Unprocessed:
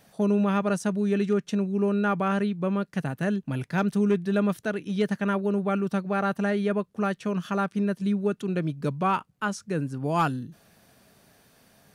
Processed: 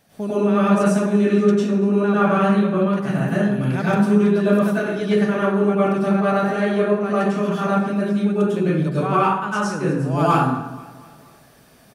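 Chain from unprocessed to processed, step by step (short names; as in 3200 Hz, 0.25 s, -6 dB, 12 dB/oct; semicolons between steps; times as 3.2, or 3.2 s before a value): feedback echo 0.238 s, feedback 54%, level -20.5 dB; plate-style reverb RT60 0.87 s, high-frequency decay 0.6×, pre-delay 85 ms, DRR -9.5 dB; gain -2.5 dB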